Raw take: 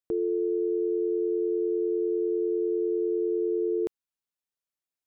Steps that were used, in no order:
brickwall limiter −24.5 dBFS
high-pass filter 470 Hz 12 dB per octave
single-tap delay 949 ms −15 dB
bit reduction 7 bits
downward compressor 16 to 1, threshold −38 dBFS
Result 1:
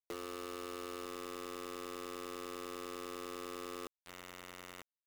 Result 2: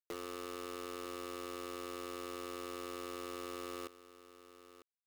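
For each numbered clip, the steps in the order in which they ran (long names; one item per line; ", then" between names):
single-tap delay, then brickwall limiter, then downward compressor, then high-pass filter, then bit reduction
brickwall limiter, then downward compressor, then high-pass filter, then bit reduction, then single-tap delay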